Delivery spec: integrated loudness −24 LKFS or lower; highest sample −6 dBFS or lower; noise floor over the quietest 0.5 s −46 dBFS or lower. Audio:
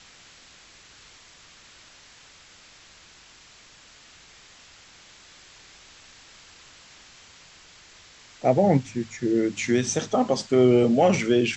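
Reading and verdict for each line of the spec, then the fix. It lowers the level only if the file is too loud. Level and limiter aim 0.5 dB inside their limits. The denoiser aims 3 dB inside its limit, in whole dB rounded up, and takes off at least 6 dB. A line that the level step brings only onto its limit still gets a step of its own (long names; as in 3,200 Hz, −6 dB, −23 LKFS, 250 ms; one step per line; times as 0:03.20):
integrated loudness −22.0 LKFS: out of spec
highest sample −7.0 dBFS: in spec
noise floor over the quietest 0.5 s −52 dBFS: in spec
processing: level −2.5 dB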